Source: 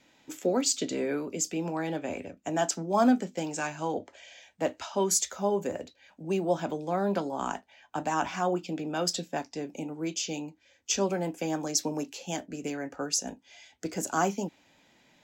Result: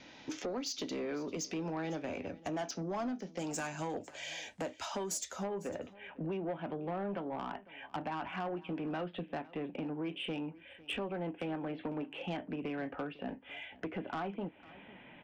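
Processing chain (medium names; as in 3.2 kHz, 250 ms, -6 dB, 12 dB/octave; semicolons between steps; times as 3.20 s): steep low-pass 6.3 kHz 72 dB/octave, from 3.38 s 12 kHz, from 5.43 s 3.2 kHz; compression 5:1, threshold -43 dBFS, peak gain reduction 22 dB; saturation -39.5 dBFS, distortion -15 dB; delay 502 ms -20.5 dB; trim +8.5 dB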